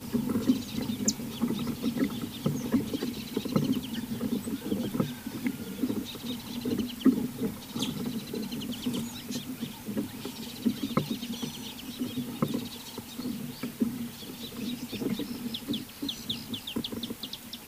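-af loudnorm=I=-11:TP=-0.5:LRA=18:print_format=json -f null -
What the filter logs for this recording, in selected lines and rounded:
"input_i" : "-33.2",
"input_tp" : "-10.5",
"input_lra" : "4.1",
"input_thresh" : "-43.2",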